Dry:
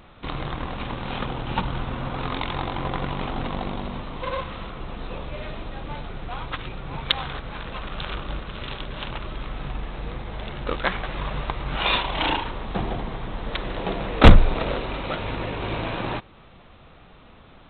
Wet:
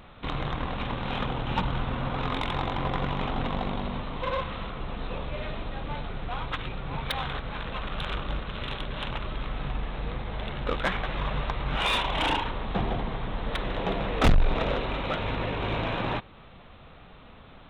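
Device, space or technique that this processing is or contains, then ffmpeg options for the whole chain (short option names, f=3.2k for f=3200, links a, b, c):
saturation between pre-emphasis and de-emphasis: -af "highshelf=f=2.2k:g=11.5,asoftclip=type=tanh:threshold=-14dB,equalizer=f=340:t=o:w=0.21:g=-4.5,highshelf=f=2.2k:g=-11.5"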